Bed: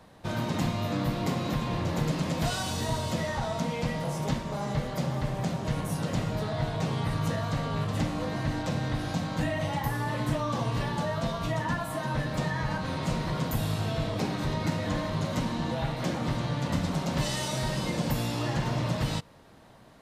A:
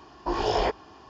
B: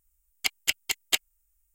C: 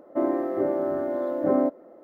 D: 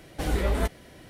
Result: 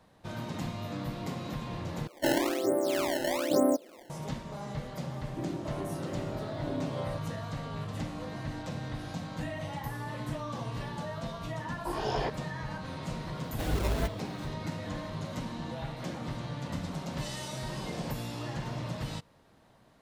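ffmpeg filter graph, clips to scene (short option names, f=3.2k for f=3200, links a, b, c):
-filter_complex "[3:a]asplit=2[a][b];[1:a]asplit=2[c][d];[0:a]volume=-7.5dB[e];[a]acrusher=samples=21:mix=1:aa=0.000001:lfo=1:lforange=33.6:lforate=1.1[f];[b]acrossover=split=480[g][h];[h]adelay=290[i];[g][i]amix=inputs=2:normalize=0[j];[4:a]acrusher=samples=16:mix=1:aa=0.000001:lfo=1:lforange=25.6:lforate=2.7[k];[d]asoftclip=type=tanh:threshold=-26.5dB[l];[e]asplit=2[m][n];[m]atrim=end=2.074[o];[f]atrim=end=2.03,asetpts=PTS-STARTPTS,volume=-3dB[p];[n]atrim=start=4.096[q];[j]atrim=end=2.03,asetpts=PTS-STARTPTS,volume=-10.5dB,afade=t=in:d=0.004:c=hsin,afade=t=out:st=2.026:d=0.004:c=hsin,adelay=5200[r];[c]atrim=end=1.09,asetpts=PTS-STARTPTS,volume=-7.5dB,afade=t=in:d=0.004:c=hsin,afade=t=out:st=1.086:d=0.004:c=hsin,adelay=11590[s];[k]atrim=end=1.09,asetpts=PTS-STARTPTS,volume=-5dB,afade=t=in:d=0.004:c=hsin,afade=t=out:st=1.086:d=0.004:c=hsin,adelay=13400[t];[l]atrim=end=1.09,asetpts=PTS-STARTPTS,volume=-15dB,afade=t=in:d=0.004:c=hsin,afade=t=out:st=1.086:d=0.004:c=hsin,adelay=17420[u];[o][p]acrossfade=d=0.004:c1=hsin:c2=hsin[v];[v][q]acrossfade=d=0.004:c1=hsin:c2=hsin[w];[w][r][s][t][u]amix=inputs=5:normalize=0"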